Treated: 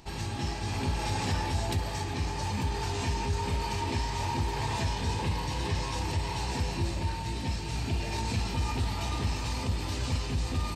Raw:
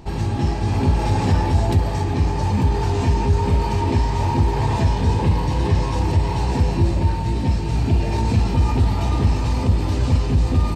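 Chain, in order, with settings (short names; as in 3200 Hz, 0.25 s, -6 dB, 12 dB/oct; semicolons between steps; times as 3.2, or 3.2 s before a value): tilt shelf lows -6.5 dB, about 1200 Hz; gain -7 dB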